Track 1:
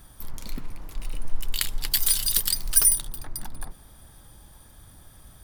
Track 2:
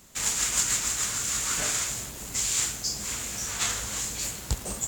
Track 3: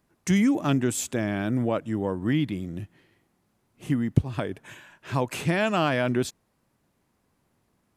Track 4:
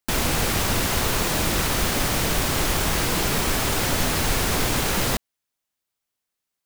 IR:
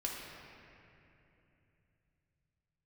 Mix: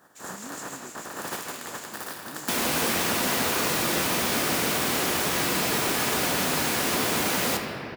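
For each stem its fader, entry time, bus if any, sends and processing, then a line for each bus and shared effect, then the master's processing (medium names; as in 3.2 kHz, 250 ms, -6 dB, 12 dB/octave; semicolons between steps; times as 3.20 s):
-3.5 dB, 0.00 s, bus A, send -15.5 dB, spectral contrast reduction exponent 0.28
-19.5 dB, 0.00 s, bus B, no send, none
-20.0 dB, 0.00 s, bus A, no send, none
-2.0 dB, 2.40 s, bus B, send -3 dB, none
bus A: 0.0 dB, brick-wall FIR low-pass 1.9 kHz; compression, threshold -34 dBFS, peak gain reduction 15.5 dB
bus B: 0.0 dB, treble shelf 8.6 kHz +6.5 dB; compression, threshold -31 dBFS, peak gain reduction 12 dB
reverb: on, RT60 2.9 s, pre-delay 4 ms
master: high-pass 190 Hz 12 dB/octave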